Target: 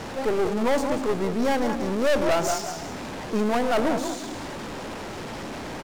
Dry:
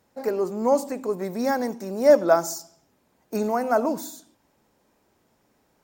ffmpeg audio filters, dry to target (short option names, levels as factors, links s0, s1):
-filter_complex "[0:a]aeval=exprs='val(0)+0.5*0.0398*sgn(val(0))':c=same,adynamicsmooth=sensitivity=7:basefreq=3000,asplit=4[s0][s1][s2][s3];[s1]adelay=185,afreqshift=37,volume=0.335[s4];[s2]adelay=370,afreqshift=74,volume=0.104[s5];[s3]adelay=555,afreqshift=111,volume=0.0324[s6];[s0][s4][s5][s6]amix=inputs=4:normalize=0,aeval=exprs='(tanh(14.1*val(0)+0.7)-tanh(0.7))/14.1':c=same,volume=1.58"